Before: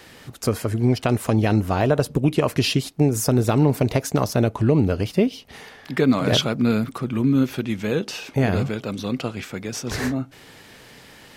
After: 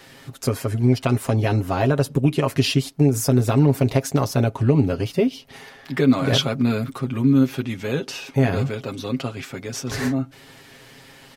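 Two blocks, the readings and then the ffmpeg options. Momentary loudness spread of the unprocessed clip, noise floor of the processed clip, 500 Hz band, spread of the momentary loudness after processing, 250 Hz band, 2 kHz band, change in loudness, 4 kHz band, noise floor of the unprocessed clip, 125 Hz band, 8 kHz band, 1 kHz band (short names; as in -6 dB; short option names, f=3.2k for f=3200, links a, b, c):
9 LU, -47 dBFS, -0.5 dB, 10 LU, +0.5 dB, -0.5 dB, +0.5 dB, 0.0 dB, -47 dBFS, +1.5 dB, -0.5 dB, -1.0 dB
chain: -af "aecho=1:1:7.4:0.69,volume=-2dB"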